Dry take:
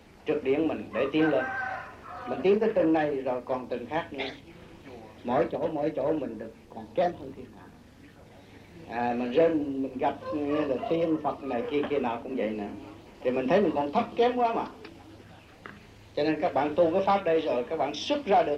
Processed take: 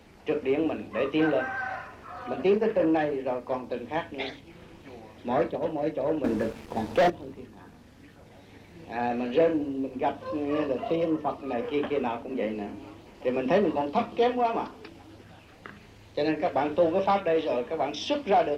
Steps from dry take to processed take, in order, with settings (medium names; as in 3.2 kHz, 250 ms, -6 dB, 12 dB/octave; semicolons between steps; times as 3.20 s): 6.24–7.10 s: waveshaping leveller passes 3